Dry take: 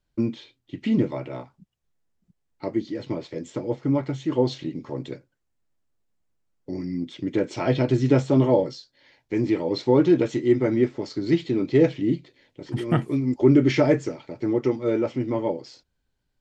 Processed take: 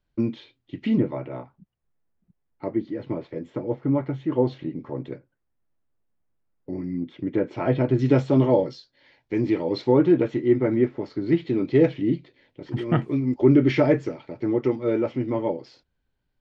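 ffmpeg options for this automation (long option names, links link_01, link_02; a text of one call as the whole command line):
ffmpeg -i in.wav -af "asetnsamples=nb_out_samples=441:pad=0,asendcmd='0.98 lowpass f 2000;7.99 lowpass f 4300;9.92 lowpass f 2400;11.47 lowpass f 3600',lowpass=4000" out.wav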